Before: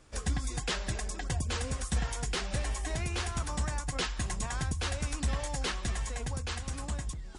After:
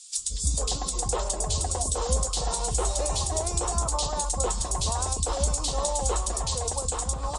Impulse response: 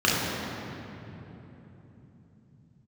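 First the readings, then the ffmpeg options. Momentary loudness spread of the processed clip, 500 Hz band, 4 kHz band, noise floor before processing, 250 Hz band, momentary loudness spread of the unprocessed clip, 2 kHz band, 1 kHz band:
2 LU, +10.5 dB, +5.5 dB, −42 dBFS, 0.0 dB, 3 LU, −7.0 dB, +9.5 dB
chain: -filter_complex "[0:a]equalizer=frequency=8400:width_type=o:width=1:gain=8.5,bandreject=frequency=1600:width=12,acrossover=split=260|2500[link_01][link_02][link_03];[link_01]adelay=170[link_04];[link_02]adelay=450[link_05];[link_04][link_05][link_03]amix=inputs=3:normalize=0,acrossover=split=840[link_06][link_07];[link_07]acompressor=threshold=-44dB:ratio=6[link_08];[link_06][link_08]amix=inputs=2:normalize=0,equalizer=frequency=125:width_type=o:width=1:gain=-7,equalizer=frequency=250:width_type=o:width=1:gain=-5,equalizer=frequency=500:width_type=o:width=1:gain=6,equalizer=frequency=1000:width_type=o:width=1:gain=10,equalizer=frequency=2000:width_type=o:width=1:gain=-9,equalizer=frequency=4000:width_type=o:width=1:gain=10,equalizer=frequency=8000:width_type=o:width=1:gain=10,volume=6dB" -ar 48000 -c:a libopus -b:a 64k

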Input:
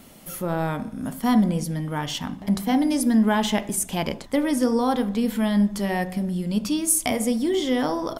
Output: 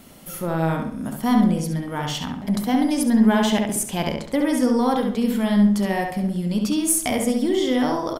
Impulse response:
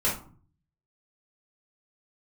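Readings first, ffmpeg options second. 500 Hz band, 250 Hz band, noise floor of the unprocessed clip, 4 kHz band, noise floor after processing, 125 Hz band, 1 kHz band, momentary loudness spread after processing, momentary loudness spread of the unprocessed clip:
+2.0 dB, +2.5 dB, −42 dBFS, +1.5 dB, −36 dBFS, +2.5 dB, +2.0 dB, 9 LU, 8 LU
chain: -filter_complex "[0:a]acontrast=52,aeval=exprs='0.631*(cos(1*acos(clip(val(0)/0.631,-1,1)))-cos(1*PI/2))+0.0141*(cos(4*acos(clip(val(0)/0.631,-1,1)))-cos(4*PI/2))':channel_layout=same,asplit=2[link_01][link_02];[link_02]adelay=68,lowpass=frequency=3700:poles=1,volume=-3.5dB,asplit=2[link_03][link_04];[link_04]adelay=68,lowpass=frequency=3700:poles=1,volume=0.35,asplit=2[link_05][link_06];[link_06]adelay=68,lowpass=frequency=3700:poles=1,volume=0.35,asplit=2[link_07][link_08];[link_08]adelay=68,lowpass=frequency=3700:poles=1,volume=0.35,asplit=2[link_09][link_10];[link_10]adelay=68,lowpass=frequency=3700:poles=1,volume=0.35[link_11];[link_01][link_03][link_05][link_07][link_09][link_11]amix=inputs=6:normalize=0,volume=-5.5dB"

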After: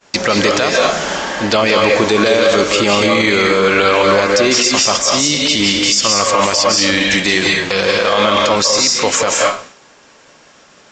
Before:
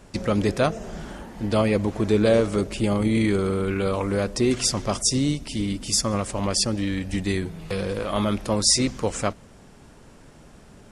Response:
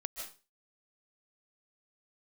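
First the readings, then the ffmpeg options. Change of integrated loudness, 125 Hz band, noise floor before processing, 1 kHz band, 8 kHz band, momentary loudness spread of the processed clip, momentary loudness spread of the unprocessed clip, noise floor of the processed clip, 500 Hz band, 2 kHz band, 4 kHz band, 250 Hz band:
+11.0 dB, 0.0 dB, −49 dBFS, +16.0 dB, +11.0 dB, 3 LU, 9 LU, −46 dBFS, +11.0 dB, +19.5 dB, +15.5 dB, +5.5 dB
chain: -filter_complex "[0:a]highpass=frequency=1300:poles=1,agate=range=-33dB:threshold=-48dB:ratio=3:detection=peak,acompressor=threshold=-28dB:ratio=6[link_01];[1:a]atrim=start_sample=2205,asetrate=37485,aresample=44100[link_02];[link_01][link_02]afir=irnorm=-1:irlink=0,alimiter=level_in=27dB:limit=-1dB:release=50:level=0:latency=1,volume=-1.5dB" -ar 16000 -c:a pcm_mulaw

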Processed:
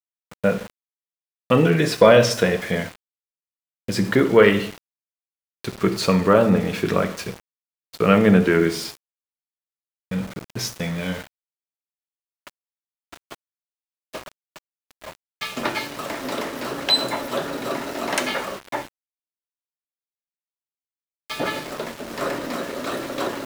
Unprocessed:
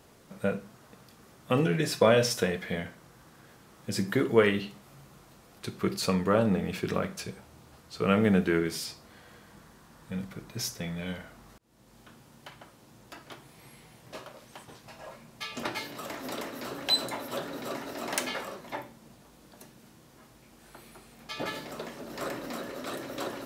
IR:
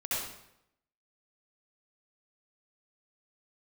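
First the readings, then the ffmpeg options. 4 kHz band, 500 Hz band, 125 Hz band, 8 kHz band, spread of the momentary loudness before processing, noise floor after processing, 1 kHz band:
+7.5 dB, +9.5 dB, +8.0 dB, +5.0 dB, 23 LU, below −85 dBFS, +9.0 dB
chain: -filter_complex "[0:a]agate=range=-33dB:threshold=-42dB:ratio=3:detection=peak,acontrast=61,lowpass=frequency=3900:poles=1,lowshelf=frequency=140:gain=-4,bandreject=frequency=760:width=25,bandreject=frequency=112.7:width_type=h:width=4,bandreject=frequency=225.4:width_type=h:width=4,bandreject=frequency=338.1:width_type=h:width=4,bandreject=frequency=450.8:width_type=h:width=4,asplit=2[link_01][link_02];[1:a]atrim=start_sample=2205[link_03];[link_02][link_03]afir=irnorm=-1:irlink=0,volume=-20dB[link_04];[link_01][link_04]amix=inputs=2:normalize=0,aeval=exprs='val(0)*gte(abs(val(0)),0.015)':channel_layout=same,volume=3.5dB"

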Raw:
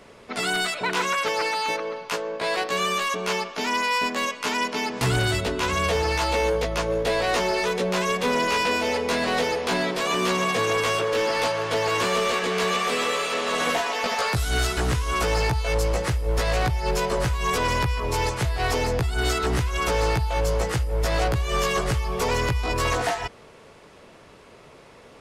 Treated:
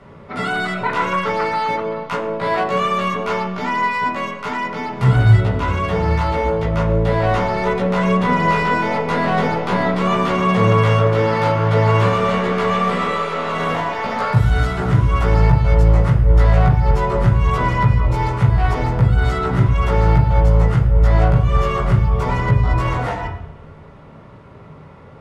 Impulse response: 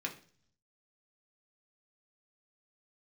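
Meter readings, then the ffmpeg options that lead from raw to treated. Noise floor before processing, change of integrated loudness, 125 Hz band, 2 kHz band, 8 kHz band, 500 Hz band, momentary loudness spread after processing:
−49 dBFS, +6.5 dB, +13.5 dB, +2.0 dB, below −10 dB, +4.0 dB, 7 LU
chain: -filter_complex "[0:a]bass=frequency=250:gain=9,treble=frequency=4000:gain=-4[link_01];[1:a]atrim=start_sample=2205,asetrate=24255,aresample=44100[link_02];[link_01][link_02]afir=irnorm=-1:irlink=0,dynaudnorm=framelen=780:gausssize=5:maxgain=3dB,highshelf=frequency=3500:gain=-10.5"

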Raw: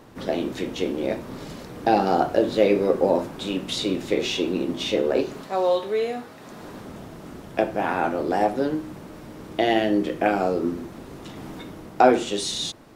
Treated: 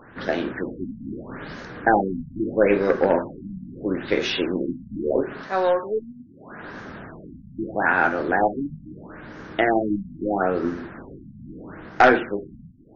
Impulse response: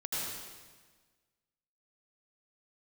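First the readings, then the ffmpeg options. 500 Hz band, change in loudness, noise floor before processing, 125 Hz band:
−1.0 dB, +0.5 dB, −43 dBFS, 0.0 dB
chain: -af "aeval=exprs='0.708*(cos(1*acos(clip(val(0)/0.708,-1,1)))-cos(1*PI/2))+0.0355*(cos(4*acos(clip(val(0)/0.708,-1,1)))-cos(4*PI/2))+0.158*(cos(5*acos(clip(val(0)/0.708,-1,1)))-cos(5*PI/2))+0.0891*(cos(7*acos(clip(val(0)/0.708,-1,1)))-cos(7*PI/2))':channel_layout=same,equalizer=frequency=1600:width=2.1:gain=13.5,afftfilt=real='re*lt(b*sr/1024,250*pow(6900/250,0.5+0.5*sin(2*PI*0.77*pts/sr)))':imag='im*lt(b*sr/1024,250*pow(6900/250,0.5+0.5*sin(2*PI*0.77*pts/sr)))':win_size=1024:overlap=0.75,volume=-2.5dB"

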